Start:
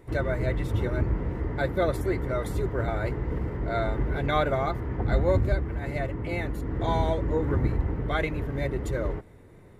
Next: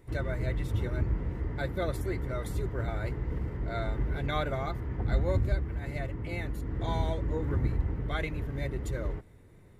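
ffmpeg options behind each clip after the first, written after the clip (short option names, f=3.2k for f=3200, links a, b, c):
-af "equalizer=f=640:w=0.34:g=-6,volume=-2dB"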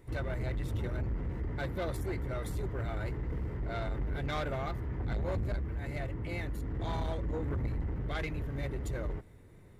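-af "asoftclip=type=tanh:threshold=-29dB"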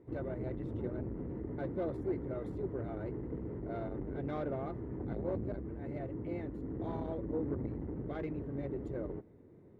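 -af "bandpass=f=320:t=q:w=1.2:csg=0,volume=4dB"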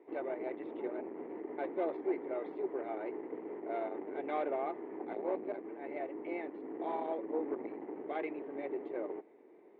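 -af "highpass=f=360:w=0.5412,highpass=f=360:w=1.3066,equalizer=f=520:t=q:w=4:g=-5,equalizer=f=800:t=q:w=4:g=5,equalizer=f=1.4k:t=q:w=4:g=-5,equalizer=f=2.3k:t=q:w=4:g=6,lowpass=f=3.4k:w=0.5412,lowpass=f=3.4k:w=1.3066,volume=5dB"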